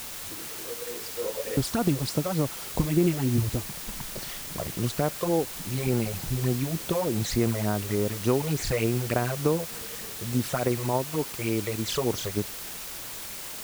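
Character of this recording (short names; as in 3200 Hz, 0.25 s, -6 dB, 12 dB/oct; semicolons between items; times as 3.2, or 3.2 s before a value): phasing stages 12, 3.4 Hz, lowest notch 250–4400 Hz; a quantiser's noise floor 6-bit, dither triangular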